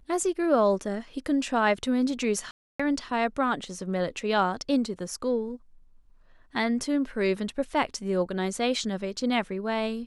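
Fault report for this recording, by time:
2.51–2.79 s: dropout 285 ms

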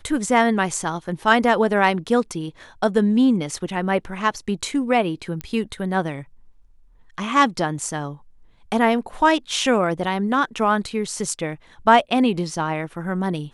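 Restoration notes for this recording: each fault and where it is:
5.41 s: pop -14 dBFS

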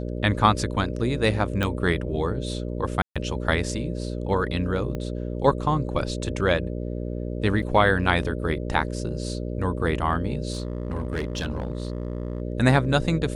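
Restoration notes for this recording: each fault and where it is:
buzz 60 Hz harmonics 10 -30 dBFS
1.63 s: pop -12 dBFS
3.02–3.16 s: dropout 136 ms
4.95 s: pop -19 dBFS
7.62–7.63 s: dropout 6.1 ms
10.53–12.42 s: clipped -23 dBFS

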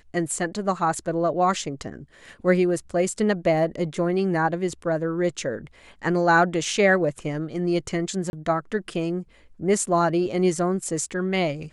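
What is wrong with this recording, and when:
8.30–8.33 s: dropout 31 ms

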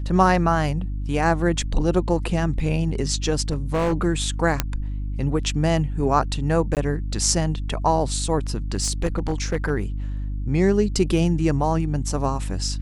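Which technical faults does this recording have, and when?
hum 50 Hz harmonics 6 -27 dBFS
3.51–3.94 s: clipped -17.5 dBFS
4.60 s: pop -4 dBFS
6.75–6.77 s: dropout 18 ms
8.74–9.70 s: clipped -16 dBFS

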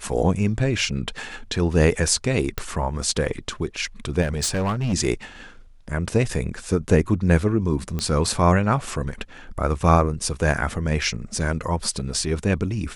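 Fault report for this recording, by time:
2.58 s: pop
4.21–4.94 s: clipped -19.5 dBFS
7.99 s: pop -13 dBFS

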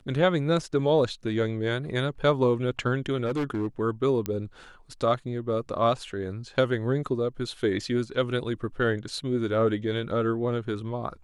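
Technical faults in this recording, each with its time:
3.25–3.67 s: clipped -24 dBFS
4.26 s: pop -14 dBFS

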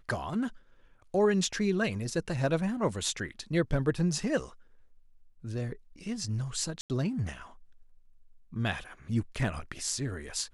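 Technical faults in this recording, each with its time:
6.81–6.90 s: dropout 88 ms

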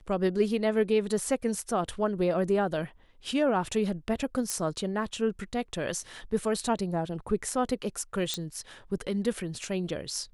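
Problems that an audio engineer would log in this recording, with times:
4.50 s: pop -15 dBFS
8.34 s: pop -14 dBFS

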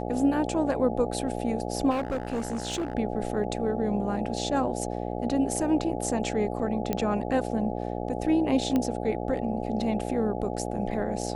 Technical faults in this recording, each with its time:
buzz 60 Hz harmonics 14 -32 dBFS
1.90–2.95 s: clipped -25.5 dBFS
6.93 s: pop -13 dBFS
8.76 s: pop -14 dBFS

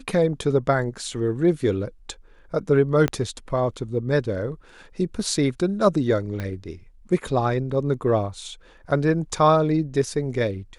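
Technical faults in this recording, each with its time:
3.08 s: pop -10 dBFS
6.40 s: pop -17 dBFS

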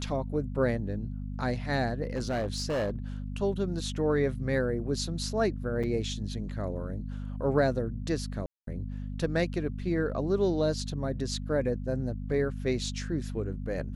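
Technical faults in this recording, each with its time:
hum 50 Hz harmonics 5 -36 dBFS
2.15–2.96 s: clipped -26 dBFS
5.83–5.84 s: dropout 6 ms
8.46–8.67 s: dropout 213 ms

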